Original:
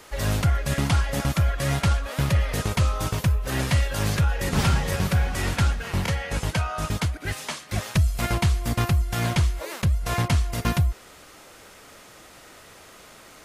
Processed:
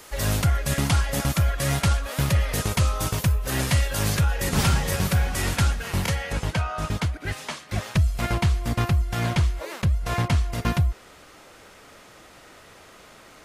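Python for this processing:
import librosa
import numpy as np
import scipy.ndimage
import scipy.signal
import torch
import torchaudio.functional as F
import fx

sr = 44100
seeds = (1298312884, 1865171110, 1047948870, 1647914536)

y = fx.high_shelf(x, sr, hz=6000.0, db=fx.steps((0.0, 7.0), (6.31, -6.5)))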